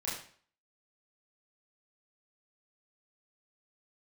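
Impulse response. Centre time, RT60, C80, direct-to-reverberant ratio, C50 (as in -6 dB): 46 ms, 0.50 s, 8.0 dB, -8.5 dB, 4.5 dB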